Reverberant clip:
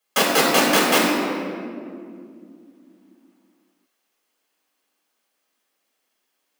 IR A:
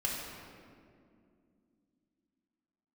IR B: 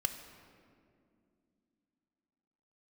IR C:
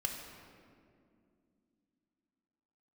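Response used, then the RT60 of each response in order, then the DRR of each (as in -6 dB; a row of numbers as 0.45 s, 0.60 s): A; 2.4 s, 2.4 s, 2.4 s; -4.5 dB, 6.5 dB, 1.0 dB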